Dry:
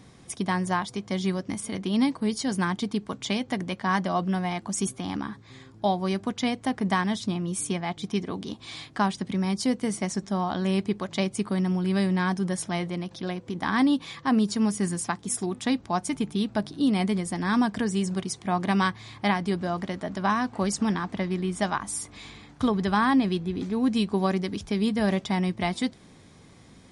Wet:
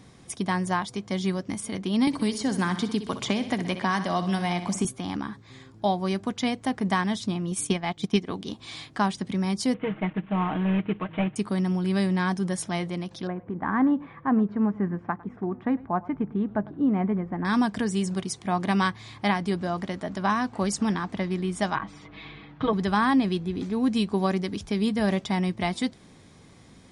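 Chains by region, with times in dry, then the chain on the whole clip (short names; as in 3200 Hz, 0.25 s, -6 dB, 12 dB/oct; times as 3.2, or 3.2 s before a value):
2.07–4.85 feedback echo 62 ms, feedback 51%, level -12 dB + three-band squash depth 100%
7.51–8.5 bell 3000 Hz +2.5 dB 1.1 oct + transient shaper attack +6 dB, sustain -6 dB
9.74–11.36 CVSD 16 kbps + comb 6.4 ms, depth 70%
13.27–17.45 LPF 1700 Hz 24 dB/oct + echo 0.103 s -21.5 dB
21.75–22.73 LPF 3400 Hz 24 dB/oct + comb 6.3 ms, depth 83%
whole clip: dry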